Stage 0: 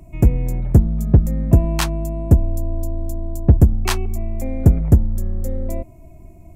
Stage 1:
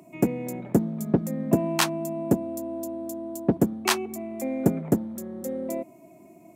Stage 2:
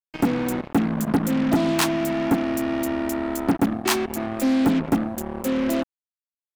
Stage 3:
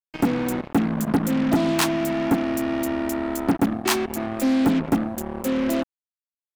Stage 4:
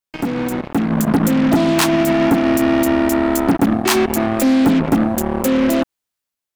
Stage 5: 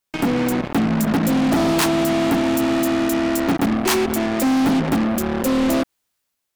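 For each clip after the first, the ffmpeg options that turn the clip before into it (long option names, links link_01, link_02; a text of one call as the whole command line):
ffmpeg -i in.wav -af "highpass=frequency=200:width=0.5412,highpass=frequency=200:width=1.3066" out.wav
ffmpeg -i in.wav -af "equalizer=frequency=280:width_type=o:width=0.31:gain=12,acrusher=bits=4:mix=0:aa=0.5,asoftclip=type=tanh:threshold=-19.5dB,volume=5dB" out.wav
ffmpeg -i in.wav -af anull out.wav
ffmpeg -i in.wav -af "alimiter=level_in=0.5dB:limit=-24dB:level=0:latency=1:release=112,volume=-0.5dB,dynaudnorm=framelen=560:gausssize=3:maxgain=6.5dB,volume=8.5dB" out.wav
ffmpeg -i in.wav -af "asoftclip=type=tanh:threshold=-23dB,volume=7.5dB" out.wav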